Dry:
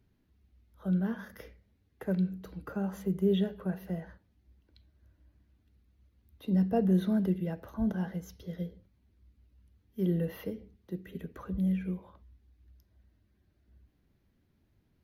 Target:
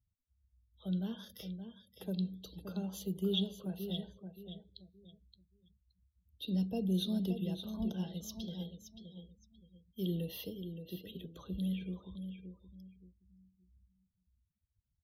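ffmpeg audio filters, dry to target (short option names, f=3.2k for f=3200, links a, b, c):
-filter_complex "[0:a]highshelf=f=2.5k:t=q:w=3:g=11.5,acrossover=split=490|3000[a][b][c];[b]acompressor=threshold=-43dB:ratio=6[d];[a][d][c]amix=inputs=3:normalize=0,aecho=1:1:572|1144|1716|2288:0.376|0.113|0.0338|0.0101,afftdn=nr=34:nf=-54,volume=-6.5dB"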